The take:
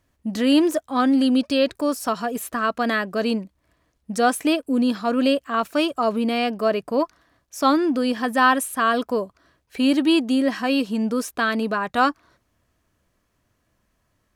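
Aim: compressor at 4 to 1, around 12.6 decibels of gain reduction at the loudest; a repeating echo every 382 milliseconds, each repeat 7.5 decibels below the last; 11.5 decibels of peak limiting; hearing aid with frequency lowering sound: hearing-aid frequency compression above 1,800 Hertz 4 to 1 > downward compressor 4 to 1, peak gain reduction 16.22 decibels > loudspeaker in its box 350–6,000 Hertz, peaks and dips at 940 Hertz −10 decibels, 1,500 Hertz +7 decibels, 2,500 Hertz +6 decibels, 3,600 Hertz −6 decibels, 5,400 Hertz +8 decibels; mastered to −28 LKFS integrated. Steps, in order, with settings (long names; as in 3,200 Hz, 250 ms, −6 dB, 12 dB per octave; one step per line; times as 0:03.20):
downward compressor 4 to 1, threshold −29 dBFS
brickwall limiter −29 dBFS
repeating echo 382 ms, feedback 42%, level −7.5 dB
hearing-aid frequency compression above 1,800 Hz 4 to 1
downward compressor 4 to 1, threshold −49 dBFS
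loudspeaker in its box 350–6,000 Hz, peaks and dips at 940 Hz −10 dB, 1,500 Hz +7 dB, 2,500 Hz +6 dB, 3,600 Hz −6 dB, 5,400 Hz +8 dB
level +21.5 dB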